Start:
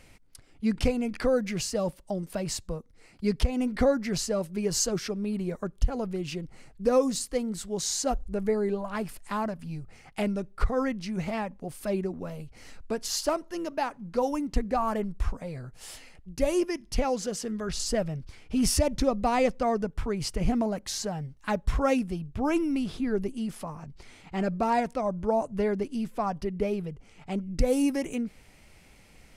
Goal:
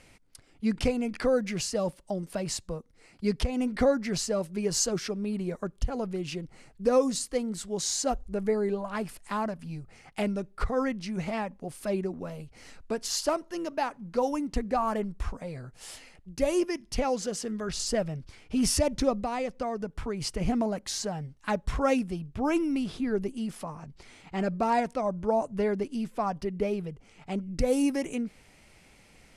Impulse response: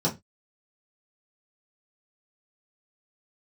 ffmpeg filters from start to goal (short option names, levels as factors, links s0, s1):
-filter_complex "[0:a]lowpass=f=12000:w=0.5412,lowpass=f=12000:w=1.3066,lowshelf=f=94:g=-6,asplit=3[s0][s1][s2];[s0]afade=t=out:st=19.2:d=0.02[s3];[s1]acompressor=threshold=0.0398:ratio=6,afade=t=in:st=19.2:d=0.02,afade=t=out:st=20.21:d=0.02[s4];[s2]afade=t=in:st=20.21:d=0.02[s5];[s3][s4][s5]amix=inputs=3:normalize=0"